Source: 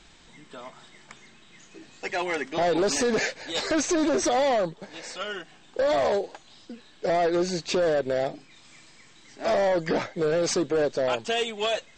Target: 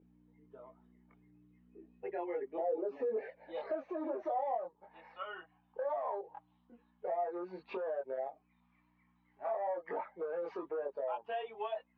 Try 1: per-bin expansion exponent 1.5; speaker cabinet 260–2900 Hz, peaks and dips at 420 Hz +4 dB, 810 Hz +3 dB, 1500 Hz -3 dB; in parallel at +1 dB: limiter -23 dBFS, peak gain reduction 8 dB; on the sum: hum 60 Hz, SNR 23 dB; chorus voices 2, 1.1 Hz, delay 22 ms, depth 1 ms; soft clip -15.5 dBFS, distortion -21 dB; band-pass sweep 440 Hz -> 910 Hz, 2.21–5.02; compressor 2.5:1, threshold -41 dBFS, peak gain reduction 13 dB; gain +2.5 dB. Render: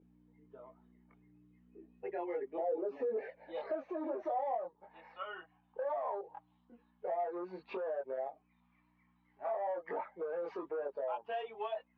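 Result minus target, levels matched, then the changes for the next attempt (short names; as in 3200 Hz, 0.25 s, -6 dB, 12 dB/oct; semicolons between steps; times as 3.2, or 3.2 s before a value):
soft clip: distortion +14 dB
change: soft clip -7.5 dBFS, distortion -34 dB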